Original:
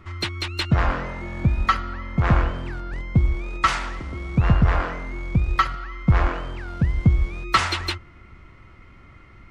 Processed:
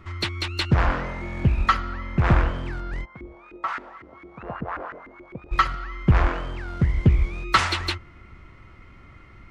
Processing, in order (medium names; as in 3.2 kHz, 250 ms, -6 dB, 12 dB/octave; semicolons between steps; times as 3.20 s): 3.04–5.51 s: LFO band-pass saw up 2.8 Hz -> 9 Hz 300–1800 Hz; loudspeaker Doppler distortion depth 0.64 ms